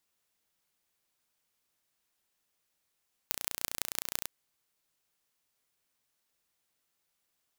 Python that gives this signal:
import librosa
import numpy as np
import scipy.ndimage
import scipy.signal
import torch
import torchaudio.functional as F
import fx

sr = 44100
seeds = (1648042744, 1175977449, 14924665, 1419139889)

y = fx.impulse_train(sr, length_s=0.97, per_s=29.6, accent_every=5, level_db=-2.0)